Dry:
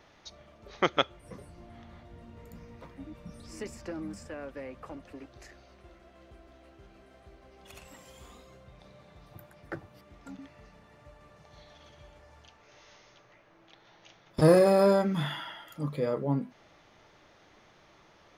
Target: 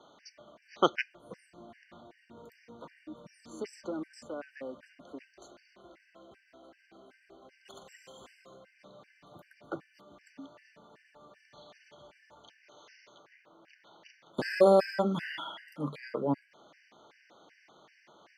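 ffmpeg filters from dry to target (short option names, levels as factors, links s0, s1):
-filter_complex "[0:a]acrossover=split=170 7600:gain=0.0708 1 0.251[s0][s1][s2];[s0][s1][s2]amix=inputs=3:normalize=0,afftfilt=real='re*gt(sin(2*PI*2.6*pts/sr)*(1-2*mod(floor(b*sr/1024/1500),2)),0)':imag='im*gt(sin(2*PI*2.6*pts/sr)*(1-2*mod(floor(b*sr/1024/1500),2)),0)':win_size=1024:overlap=0.75,volume=1.33"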